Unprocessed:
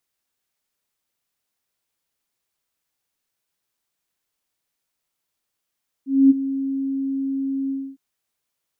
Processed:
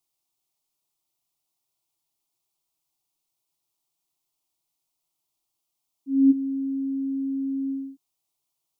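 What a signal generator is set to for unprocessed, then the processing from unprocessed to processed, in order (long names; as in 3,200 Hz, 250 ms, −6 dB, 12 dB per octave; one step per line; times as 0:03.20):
note with an ADSR envelope sine 271 Hz, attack 242 ms, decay 23 ms, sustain −14 dB, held 1.64 s, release 267 ms −7.5 dBFS
phaser with its sweep stopped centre 330 Hz, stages 8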